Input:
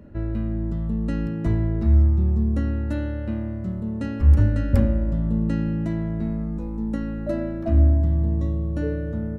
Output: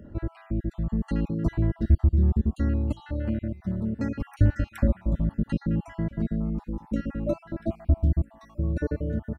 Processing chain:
time-frequency cells dropped at random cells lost 48%
slap from a distant wall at 220 metres, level −25 dB

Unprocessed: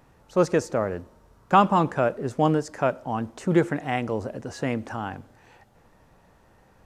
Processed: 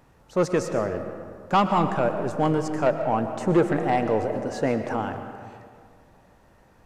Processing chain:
0:02.86–0:05.02: parametric band 610 Hz +7 dB 2 octaves
soft clipping −12 dBFS, distortion −14 dB
convolution reverb RT60 2.1 s, pre-delay 80 ms, DRR 7.5 dB

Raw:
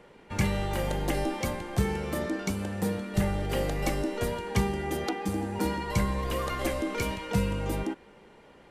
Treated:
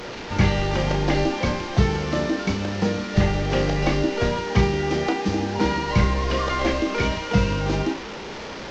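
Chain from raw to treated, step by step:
linear delta modulator 32 kbit/s, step −36.5 dBFS
flutter between parallel walls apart 5.7 metres, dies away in 0.25 s
level +7.5 dB

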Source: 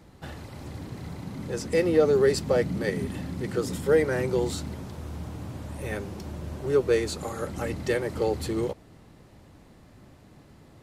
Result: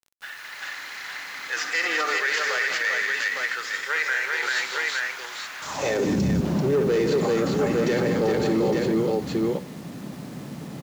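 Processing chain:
stylus tracing distortion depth 0.21 ms
multi-tap delay 64/163/211/390/859 ms −11.5/−11/−11.5/−4/−8 dB
high-pass filter sweep 1,700 Hz → 180 Hz, 0:05.58–0:06.24
on a send at −15.5 dB: convolution reverb, pre-delay 3 ms
on the sum: automatic gain control gain up to 8 dB
in parallel at −10 dB: wave folding −12 dBFS
on the sum: downsampling to 16,000 Hz
0:01.56–0:02.18: hollow resonant body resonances 300/730/1,200 Hz, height 11 dB, ringing for 65 ms
0:03.54–0:04.43: tuned comb filter 130 Hz, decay 0.49 s, harmonics all, mix 50%
0:05.62–0:06.41: bass and treble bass +15 dB, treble +11 dB
brickwall limiter −15.5 dBFS, peak gain reduction 13.5 dB
bit reduction 8 bits

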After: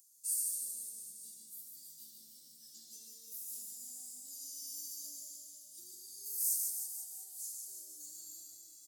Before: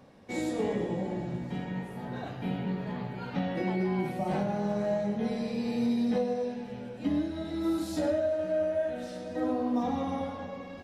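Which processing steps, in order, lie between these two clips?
reverse bouncing-ball delay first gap 180 ms, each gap 1.1×, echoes 5
speed change +22%
inverse Chebyshev high-pass filter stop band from 2,600 Hz, stop band 60 dB
level +17.5 dB

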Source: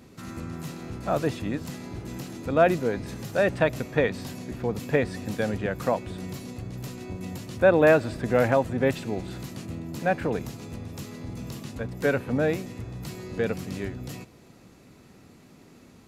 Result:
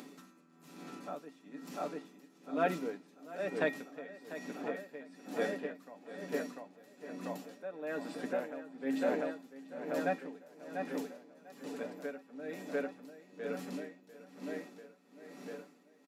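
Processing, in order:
elliptic high-pass filter 190 Hz, stop band 50 dB
comb filter 6.9 ms, depth 56%
upward compression, threshold −34 dBFS
tuned comb filter 270 Hz, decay 0.63 s, harmonics odd, mix 80%
tape delay 694 ms, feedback 71%, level −4 dB, low-pass 4,200 Hz
tremolo with a sine in dB 1.1 Hz, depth 19 dB
level +4.5 dB

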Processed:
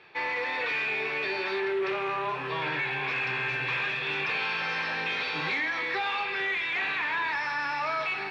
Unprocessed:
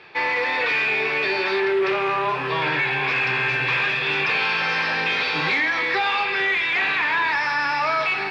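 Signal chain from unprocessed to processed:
notch filter 4,900 Hz, Q 13
level −8 dB

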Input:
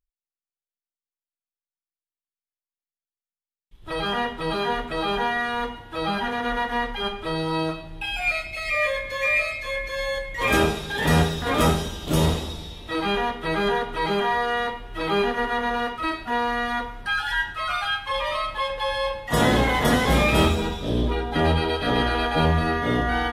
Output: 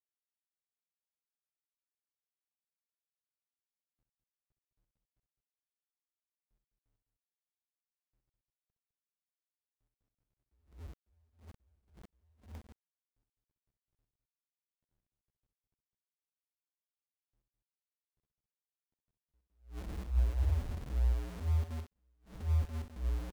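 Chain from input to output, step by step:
inverse Chebyshev low-pass filter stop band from 510 Hz, stop band 80 dB
spectral peaks only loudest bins 1
centre clipping without the shift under −39 dBFS
on a send: loudspeakers that aren't time-aligned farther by 22 metres −9 dB, 71 metres −9 dB
on the sum: level that may rise only so fast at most 160 dB per second

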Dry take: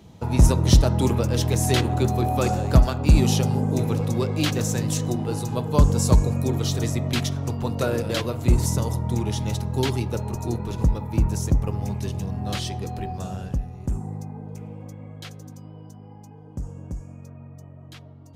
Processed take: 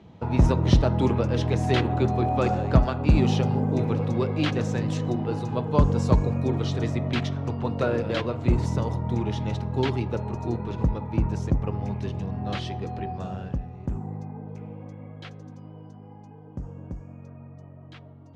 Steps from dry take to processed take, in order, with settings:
low-pass filter 2,900 Hz 12 dB per octave
low-shelf EQ 70 Hz −8.5 dB

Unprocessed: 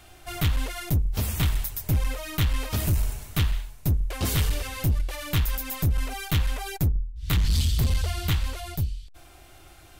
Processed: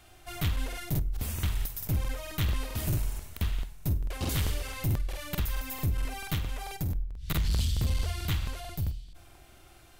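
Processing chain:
0:06.34–0:06.95: downward compressor 3 to 1, threshold −24 dBFS, peak gain reduction 4 dB
flutter between parallel walls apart 8.5 metres, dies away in 0.27 s
on a send at −24 dB: convolution reverb RT60 1.3 s, pre-delay 32 ms
on the sum: regular buffer underruns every 0.22 s, samples 2,048, repeat, from 0:00.68
level −5.5 dB

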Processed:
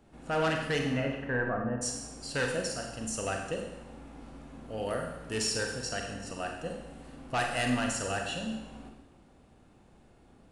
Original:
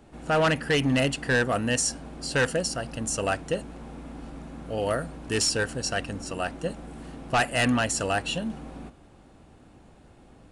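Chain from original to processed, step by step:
0:00.78–0:01.81: low-pass filter 2,800 Hz → 1,200 Hz 24 dB per octave
four-comb reverb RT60 1 s, combs from 32 ms, DRR 2 dB
level −8 dB

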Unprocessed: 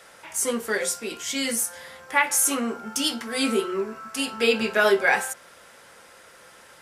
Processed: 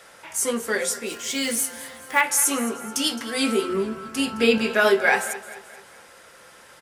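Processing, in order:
0:01.07–0:02.22: one scale factor per block 5 bits
0:03.69–0:04.58: bass and treble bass +11 dB, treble −2 dB
repeating echo 215 ms, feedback 47%, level −16 dB
level +1 dB

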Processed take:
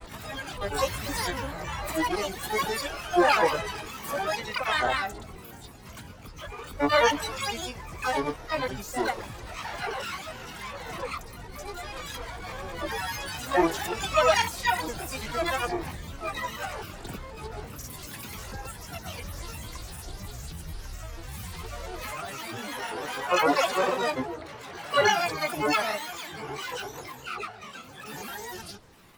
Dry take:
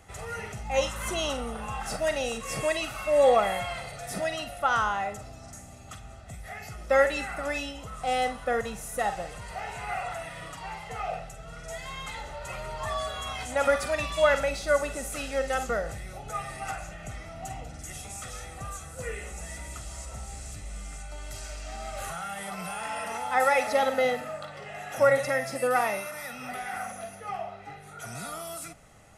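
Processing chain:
granular cloud, pitch spread up and down by 12 semitones
pitch-shifted copies added +12 semitones −4 dB

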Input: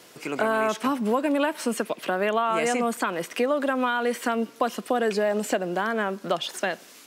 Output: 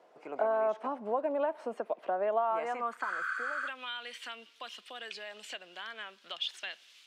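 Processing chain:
band-pass filter sweep 690 Hz → 3,200 Hz, 0:02.38–0:03.80
healed spectral selection 0:03.06–0:03.65, 1,100–9,800 Hz before
level −2 dB

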